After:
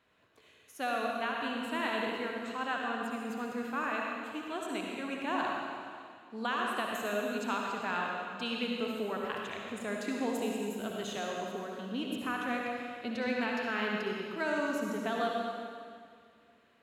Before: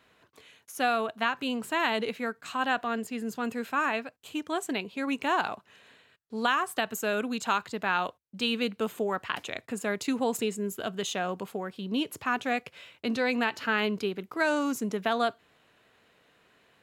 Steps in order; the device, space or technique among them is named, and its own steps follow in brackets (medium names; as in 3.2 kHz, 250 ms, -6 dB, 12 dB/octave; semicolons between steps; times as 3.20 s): 11.17–11.75 s: high-pass 190 Hz; swimming-pool hall (reverberation RT60 2.1 s, pre-delay 55 ms, DRR -1.5 dB; treble shelf 5.5 kHz -5.5 dB); trim -8 dB